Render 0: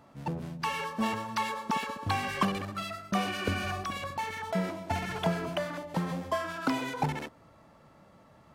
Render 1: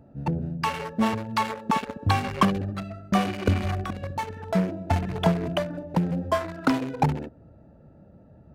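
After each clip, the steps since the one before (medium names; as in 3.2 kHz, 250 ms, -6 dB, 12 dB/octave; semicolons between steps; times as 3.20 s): local Wiener filter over 41 samples; peaking EQ 68 Hz +6 dB 1.3 oct; trim +7.5 dB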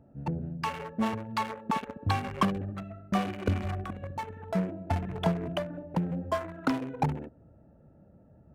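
local Wiener filter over 9 samples; trim -5.5 dB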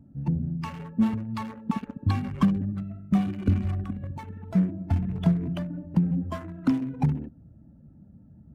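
coarse spectral quantiser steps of 15 dB; resonant low shelf 340 Hz +10.5 dB, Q 1.5; trim -5 dB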